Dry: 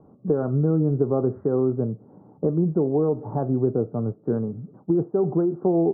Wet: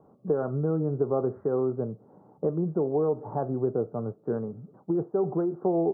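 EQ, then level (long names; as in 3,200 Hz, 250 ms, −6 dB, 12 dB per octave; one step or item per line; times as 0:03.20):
low-shelf EQ 190 Hz −11 dB
parametric band 280 Hz −4.5 dB 0.77 octaves
0.0 dB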